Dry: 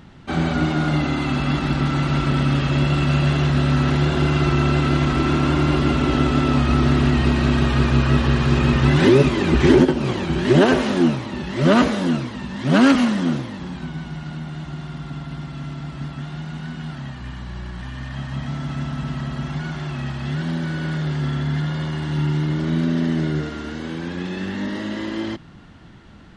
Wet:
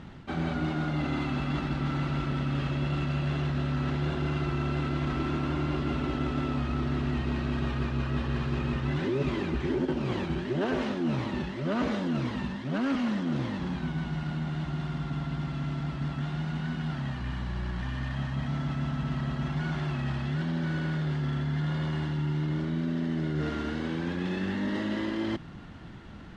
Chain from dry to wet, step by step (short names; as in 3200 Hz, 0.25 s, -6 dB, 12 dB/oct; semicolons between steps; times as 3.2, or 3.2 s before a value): CVSD 64 kbps; air absorption 110 m; reverse; compressor 6:1, threshold -27 dBFS, peak gain reduction 17 dB; reverse